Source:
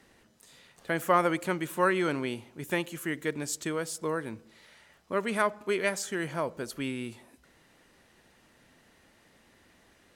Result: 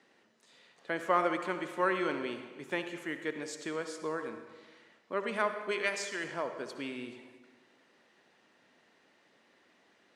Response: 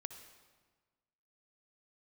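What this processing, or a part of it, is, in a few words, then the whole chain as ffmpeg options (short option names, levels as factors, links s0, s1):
supermarket ceiling speaker: -filter_complex "[0:a]asettb=1/sr,asplit=3[s0][s1][s2];[s0]atrim=end=5.714[s3];[s1]atrim=start=5.71:end=6.24,asetpts=PTS-STARTPTS,afade=t=in:d=0.004:c=qsin,afade=t=out:st=0.526:d=0.004:c=qsin,tiltshelf=f=1100:g=-5[s4];[s2]atrim=start=6.236[s5];[s3][s4]acrossfade=d=0.004:c1=hsin:c2=qsin[s6];[s6][s5]acrossfade=d=0.004:c1=qsin:c2=hsin,highpass=250,lowpass=5400[s7];[1:a]atrim=start_sample=2205[s8];[s7][s8]afir=irnorm=-1:irlink=0"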